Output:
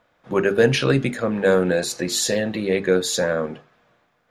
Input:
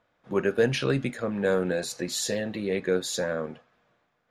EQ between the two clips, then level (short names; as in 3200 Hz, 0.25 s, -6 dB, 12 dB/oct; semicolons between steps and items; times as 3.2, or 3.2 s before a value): notches 50/100/150/200/250/300/350/400/450 Hz; +7.5 dB